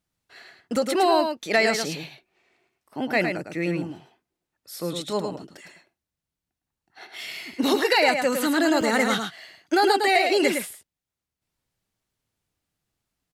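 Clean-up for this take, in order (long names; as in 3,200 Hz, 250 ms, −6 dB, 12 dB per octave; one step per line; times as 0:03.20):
clipped peaks rebuilt −8.5 dBFS
repair the gap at 0:00.76/0:08.81/0:10.87, 2.7 ms
echo removal 108 ms −6 dB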